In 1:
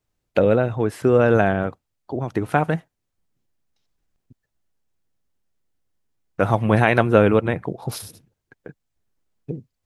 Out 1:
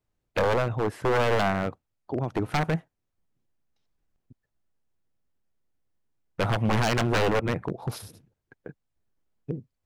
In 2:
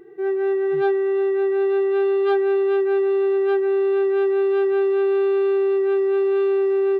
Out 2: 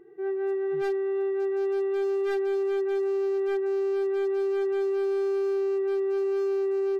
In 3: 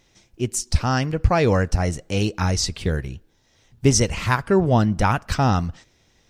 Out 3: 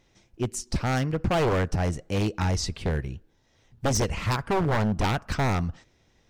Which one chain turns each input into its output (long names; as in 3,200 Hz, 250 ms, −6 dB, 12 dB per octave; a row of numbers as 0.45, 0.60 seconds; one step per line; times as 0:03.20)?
high-shelf EQ 2,900 Hz −7 dB
wave folding −15.5 dBFS
loudness normalisation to −27 LKFS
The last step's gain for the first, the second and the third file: −2.0, −7.0, −2.5 decibels